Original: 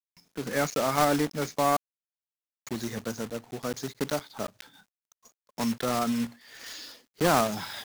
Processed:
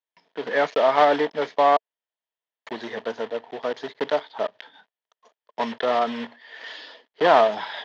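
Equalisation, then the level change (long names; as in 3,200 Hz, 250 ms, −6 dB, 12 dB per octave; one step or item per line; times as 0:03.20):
loudspeaker in its box 280–4,200 Hz, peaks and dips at 450 Hz +8 dB, 650 Hz +10 dB, 940 Hz +10 dB, 1,800 Hz +9 dB, 3,200 Hz +8 dB
0.0 dB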